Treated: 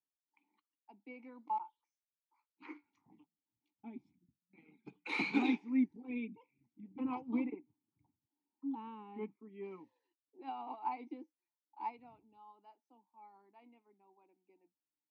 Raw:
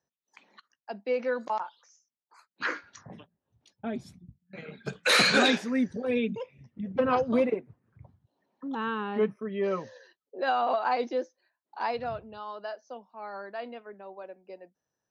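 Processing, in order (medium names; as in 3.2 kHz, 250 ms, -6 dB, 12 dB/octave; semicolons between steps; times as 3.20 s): vowel filter u; bass shelf 130 Hz +6 dB; upward expansion 1.5:1, over -53 dBFS; trim +3.5 dB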